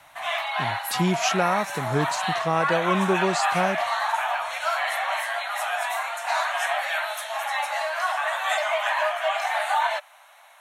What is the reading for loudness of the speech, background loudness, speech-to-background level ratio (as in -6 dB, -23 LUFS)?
-26.0 LUFS, -26.0 LUFS, 0.0 dB